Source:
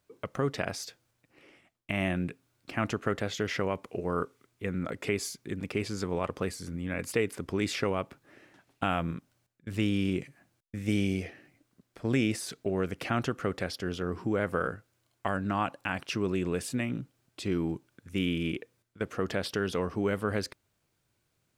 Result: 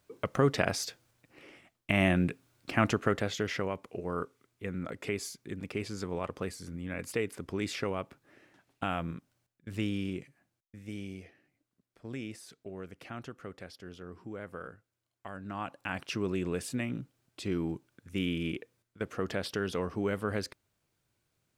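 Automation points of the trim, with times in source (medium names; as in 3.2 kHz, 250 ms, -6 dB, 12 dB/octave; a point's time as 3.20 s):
2.81 s +4 dB
3.76 s -4 dB
9.80 s -4 dB
10.88 s -13 dB
15.29 s -13 dB
15.96 s -2.5 dB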